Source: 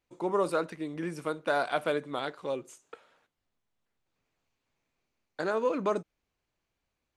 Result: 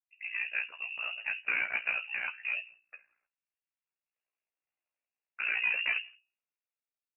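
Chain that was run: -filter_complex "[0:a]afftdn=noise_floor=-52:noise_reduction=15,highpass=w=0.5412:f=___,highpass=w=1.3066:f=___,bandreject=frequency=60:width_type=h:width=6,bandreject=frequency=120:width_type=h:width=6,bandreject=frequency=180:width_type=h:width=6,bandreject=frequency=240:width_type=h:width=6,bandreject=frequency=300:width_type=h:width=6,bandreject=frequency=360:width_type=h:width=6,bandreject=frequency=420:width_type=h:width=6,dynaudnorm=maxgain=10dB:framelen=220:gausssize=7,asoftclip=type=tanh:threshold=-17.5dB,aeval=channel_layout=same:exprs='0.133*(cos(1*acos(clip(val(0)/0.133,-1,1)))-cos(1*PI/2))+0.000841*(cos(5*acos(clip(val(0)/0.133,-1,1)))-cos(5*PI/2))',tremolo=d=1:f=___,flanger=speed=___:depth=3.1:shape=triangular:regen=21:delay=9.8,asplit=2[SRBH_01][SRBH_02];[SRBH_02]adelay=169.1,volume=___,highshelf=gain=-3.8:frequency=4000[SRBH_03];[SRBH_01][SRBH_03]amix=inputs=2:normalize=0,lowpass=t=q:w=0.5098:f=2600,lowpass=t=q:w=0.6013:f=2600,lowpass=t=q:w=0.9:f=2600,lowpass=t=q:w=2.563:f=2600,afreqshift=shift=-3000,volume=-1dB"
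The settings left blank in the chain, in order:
170, 170, 59, 0.81, -30dB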